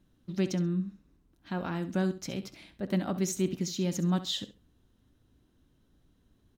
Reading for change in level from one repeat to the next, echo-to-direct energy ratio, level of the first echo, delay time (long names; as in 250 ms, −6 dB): −13.5 dB, −14.0 dB, −14.0 dB, 67 ms